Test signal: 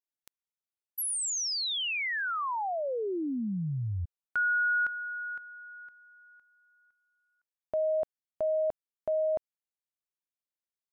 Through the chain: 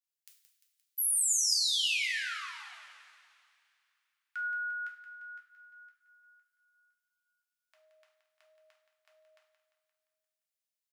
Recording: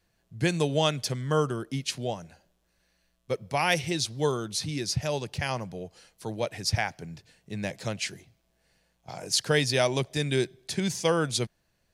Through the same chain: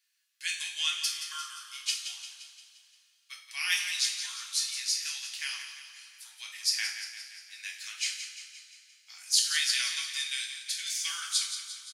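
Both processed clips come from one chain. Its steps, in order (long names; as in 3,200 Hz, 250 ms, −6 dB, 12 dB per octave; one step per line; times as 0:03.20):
Bessel high-pass filter 2,600 Hz, order 6
repeating echo 174 ms, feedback 55%, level −10 dB
coupled-rooms reverb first 0.47 s, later 2.7 s, from −17 dB, DRR −1 dB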